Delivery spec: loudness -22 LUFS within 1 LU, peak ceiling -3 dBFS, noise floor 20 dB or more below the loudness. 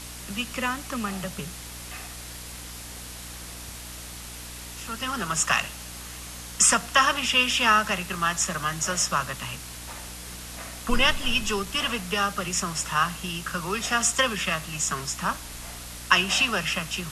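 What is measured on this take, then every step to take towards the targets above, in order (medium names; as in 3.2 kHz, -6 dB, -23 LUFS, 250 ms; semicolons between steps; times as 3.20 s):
hum 60 Hz; highest harmonic 300 Hz; hum level -42 dBFS; noise floor -40 dBFS; noise floor target -45 dBFS; loudness -24.5 LUFS; peak level -2.5 dBFS; loudness target -22.0 LUFS
-> de-hum 60 Hz, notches 5; noise reduction 6 dB, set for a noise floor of -40 dBFS; trim +2.5 dB; peak limiter -3 dBFS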